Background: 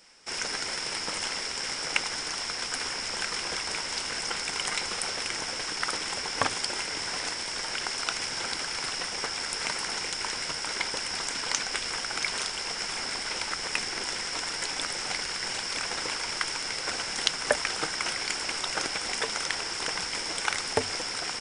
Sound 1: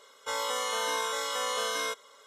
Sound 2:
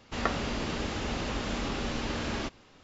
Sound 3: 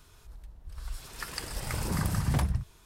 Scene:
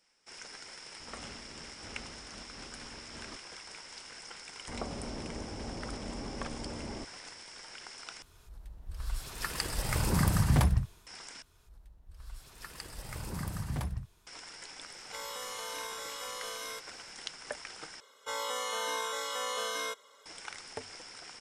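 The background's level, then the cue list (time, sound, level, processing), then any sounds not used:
background -15.5 dB
0.88 add 2 -14 dB + noise-modulated level
4.56 add 2 -7 dB + inverse Chebyshev low-pass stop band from 2600 Hz, stop band 50 dB
8.22 replace with 3 -3 dB + AGC gain up to 5.5 dB
11.42 replace with 3 -8 dB
14.86 add 1 -11 dB + high shelf 10000 Hz +11.5 dB
18 replace with 1 -4 dB

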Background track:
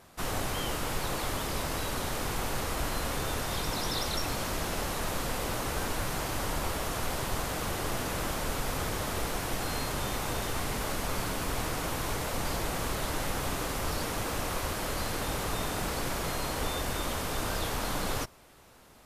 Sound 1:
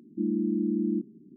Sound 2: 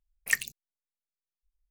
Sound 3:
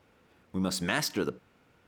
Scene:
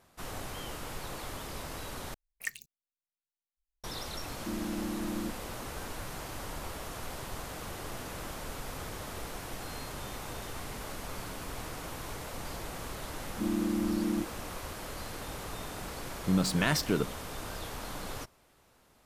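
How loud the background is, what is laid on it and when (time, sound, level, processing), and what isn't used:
background track -8 dB
2.14 replace with 2 -10.5 dB
4.29 add 1 -3 dB + limiter -26.5 dBFS
13.18 add 1 -3.5 dB + dispersion highs, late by 0.1 s, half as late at 310 Hz
15.73 add 3 + bell 140 Hz +7.5 dB 1 oct

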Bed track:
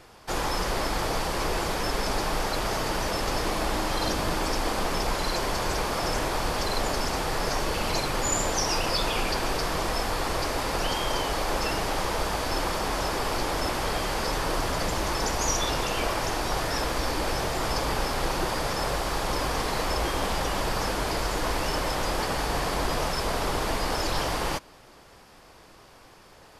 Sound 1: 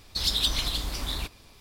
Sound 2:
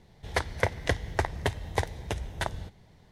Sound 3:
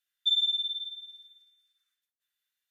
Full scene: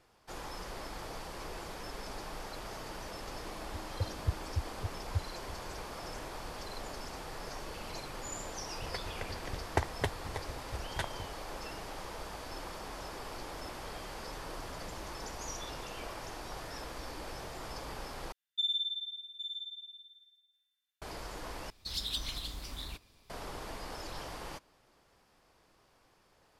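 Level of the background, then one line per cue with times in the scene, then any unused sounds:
bed track -15.5 dB
3.37 add 2 -10.5 dB + spectral expander 4:1
8.58 add 2 -0.5 dB + dB-ramp tremolo decaying 4.2 Hz, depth 25 dB
13.27 add 3 -16.5 dB + median filter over 25 samples
18.32 replace with 3 -6.5 dB + echo 0.811 s -8 dB
21.7 replace with 1 -11 dB

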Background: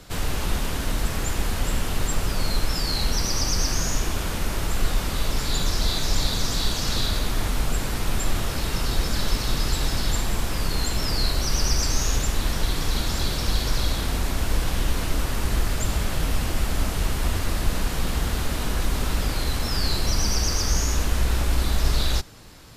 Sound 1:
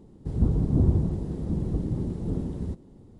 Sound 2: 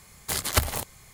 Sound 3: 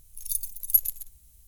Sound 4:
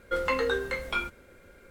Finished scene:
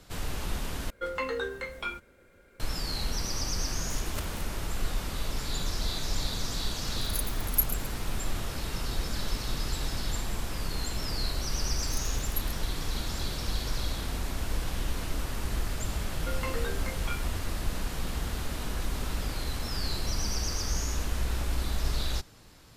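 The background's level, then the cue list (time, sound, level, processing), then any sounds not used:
background -8 dB
0.9 replace with 4 -5 dB
3.61 add 2 -17 dB
6.84 add 3 -5.5 dB
11.62 add 3 -16 dB
16.15 add 4 -9 dB
not used: 1

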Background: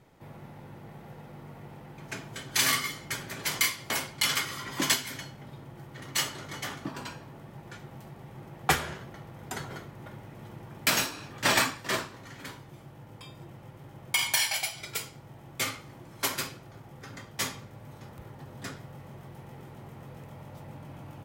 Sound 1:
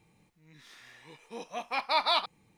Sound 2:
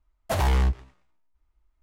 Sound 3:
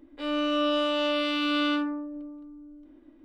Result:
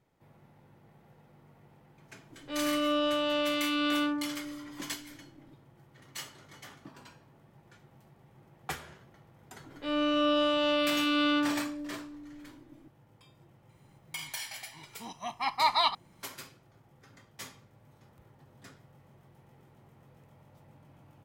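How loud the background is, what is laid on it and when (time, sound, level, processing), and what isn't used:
background -13 dB
2.3 add 3 -3 dB + downsampling 22050 Hz
9.64 add 3 -1 dB
13.69 add 1 -2.5 dB + comb 1 ms, depth 94%
not used: 2

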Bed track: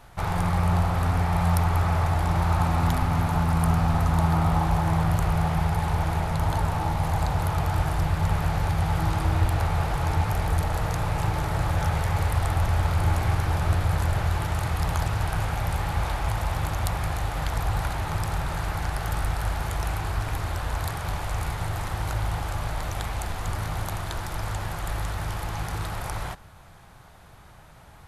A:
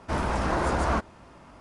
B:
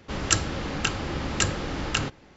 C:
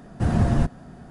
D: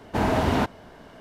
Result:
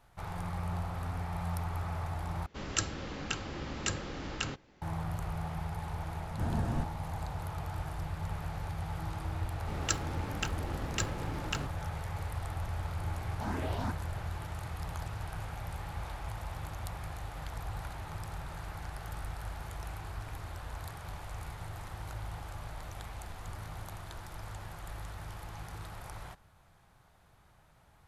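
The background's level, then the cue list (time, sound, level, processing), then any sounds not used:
bed track -13.5 dB
2.46 replace with B -9.5 dB
6.18 add C -13 dB
9.58 add B -9.5 dB + backlash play -32.5 dBFS
13.26 add D -12 dB + endless phaser +2.6 Hz
not used: A

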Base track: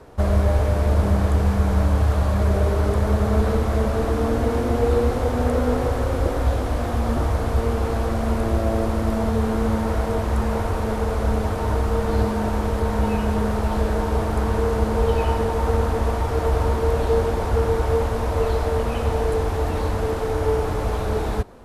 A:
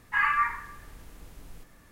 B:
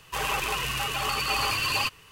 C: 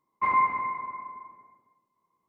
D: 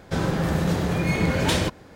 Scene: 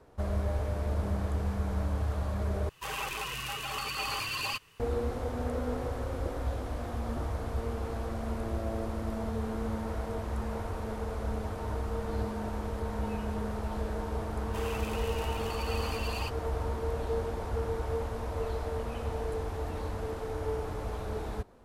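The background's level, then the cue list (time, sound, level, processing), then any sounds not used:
base track -12.5 dB
2.69 replace with B -7.5 dB
14.41 add B -13.5 dB
not used: A, C, D

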